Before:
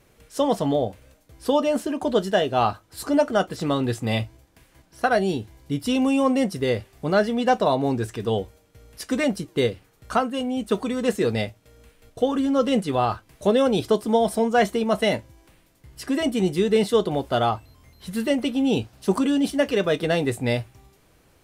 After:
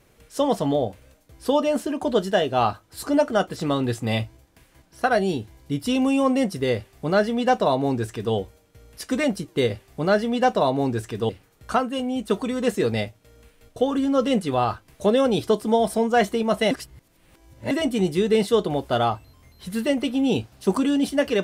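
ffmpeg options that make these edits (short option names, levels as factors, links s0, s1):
-filter_complex "[0:a]asplit=5[s0][s1][s2][s3][s4];[s0]atrim=end=9.702[s5];[s1]atrim=start=6.748:end=8.342[s6];[s2]atrim=start=9.698:end=15.122[s7];[s3]atrim=start=15.118:end=16.122,asetpts=PTS-STARTPTS,areverse[s8];[s4]atrim=start=16.118[s9];[s5][s6]acrossfade=d=0.004:c1=hsin:c2=hsin[s10];[s10][s7]acrossfade=d=0.004:c1=hsin:c2=hsin[s11];[s11][s8]acrossfade=d=0.004:c1=hsin:c2=hsin[s12];[s12][s9]acrossfade=d=0.004:c1=hsin:c2=hsin"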